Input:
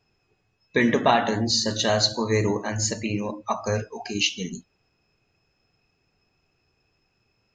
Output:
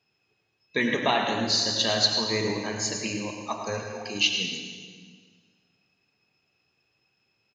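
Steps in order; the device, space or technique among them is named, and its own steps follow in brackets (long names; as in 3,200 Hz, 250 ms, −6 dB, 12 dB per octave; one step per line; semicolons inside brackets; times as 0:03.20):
PA in a hall (high-pass filter 120 Hz 12 dB per octave; parametric band 3,300 Hz +8 dB 1.4 octaves; single-tap delay 108 ms −11 dB; convolution reverb RT60 1.7 s, pre-delay 75 ms, DRR 4.5 dB)
level −6.5 dB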